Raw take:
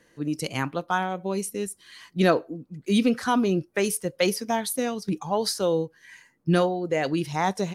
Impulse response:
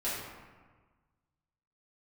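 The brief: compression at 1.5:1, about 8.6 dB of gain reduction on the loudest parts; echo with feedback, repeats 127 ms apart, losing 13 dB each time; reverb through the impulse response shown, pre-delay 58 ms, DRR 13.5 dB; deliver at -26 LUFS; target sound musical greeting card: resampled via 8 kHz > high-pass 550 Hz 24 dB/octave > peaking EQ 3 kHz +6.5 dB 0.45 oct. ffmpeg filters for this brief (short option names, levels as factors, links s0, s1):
-filter_complex "[0:a]acompressor=threshold=0.00891:ratio=1.5,aecho=1:1:127|254|381:0.224|0.0493|0.0108,asplit=2[s0][s1];[1:a]atrim=start_sample=2205,adelay=58[s2];[s1][s2]afir=irnorm=-1:irlink=0,volume=0.1[s3];[s0][s3]amix=inputs=2:normalize=0,aresample=8000,aresample=44100,highpass=f=550:w=0.5412,highpass=f=550:w=1.3066,equalizer=f=3000:t=o:w=0.45:g=6.5,volume=3.55"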